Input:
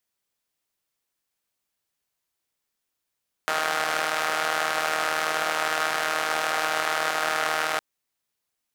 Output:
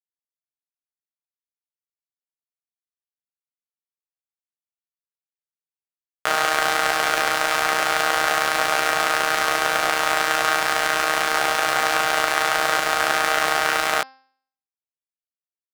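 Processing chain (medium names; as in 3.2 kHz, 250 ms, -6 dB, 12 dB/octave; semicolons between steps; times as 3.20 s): granular stretch 1.8×, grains 69 ms; small samples zeroed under -34 dBFS; de-hum 263.8 Hz, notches 21; trim +6.5 dB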